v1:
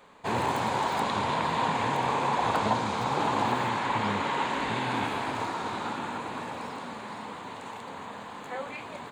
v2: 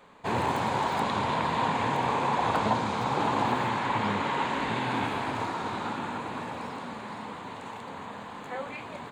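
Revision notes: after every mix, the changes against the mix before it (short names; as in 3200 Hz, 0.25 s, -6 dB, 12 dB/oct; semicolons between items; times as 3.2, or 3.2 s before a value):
background: add tone controls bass +3 dB, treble -3 dB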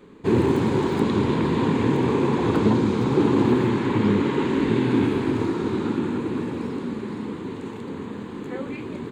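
master: add resonant low shelf 500 Hz +10 dB, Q 3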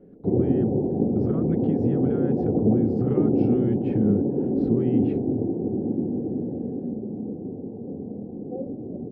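background: add rippled Chebyshev low-pass 760 Hz, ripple 3 dB; master: add bell 1300 Hz +4.5 dB 1.4 oct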